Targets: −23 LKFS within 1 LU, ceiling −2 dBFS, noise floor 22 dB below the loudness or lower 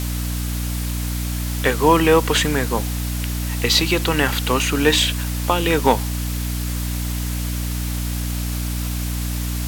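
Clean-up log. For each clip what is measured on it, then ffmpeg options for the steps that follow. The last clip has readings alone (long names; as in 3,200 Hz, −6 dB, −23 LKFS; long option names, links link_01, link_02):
mains hum 60 Hz; hum harmonics up to 300 Hz; level of the hum −22 dBFS; background noise floor −24 dBFS; target noise floor −43 dBFS; integrated loudness −20.5 LKFS; sample peak −1.5 dBFS; target loudness −23.0 LKFS
→ -af "bandreject=frequency=60:width_type=h:width=6,bandreject=frequency=120:width_type=h:width=6,bandreject=frequency=180:width_type=h:width=6,bandreject=frequency=240:width_type=h:width=6,bandreject=frequency=300:width_type=h:width=6"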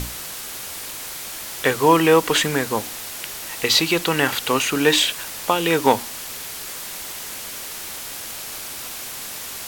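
mains hum none found; background noise floor −33 dBFS; target noise floor −44 dBFS
→ -af "afftdn=noise_reduction=11:noise_floor=-33"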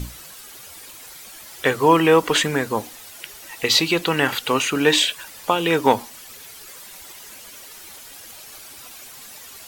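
background noise floor −41 dBFS; integrated loudness −19.0 LKFS; sample peak −2.0 dBFS; target loudness −23.0 LKFS
→ -af "volume=-4dB"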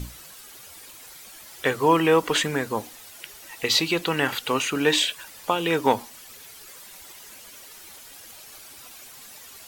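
integrated loudness −23.0 LKFS; sample peak −6.0 dBFS; background noise floor −45 dBFS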